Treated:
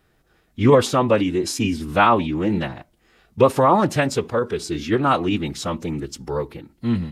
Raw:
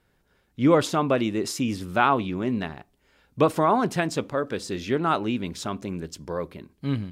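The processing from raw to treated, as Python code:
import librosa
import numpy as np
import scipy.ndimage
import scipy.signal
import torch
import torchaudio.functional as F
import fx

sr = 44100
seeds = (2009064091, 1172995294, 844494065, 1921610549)

y = fx.pitch_keep_formants(x, sr, semitones=-3.0)
y = y * librosa.db_to_amplitude(5.5)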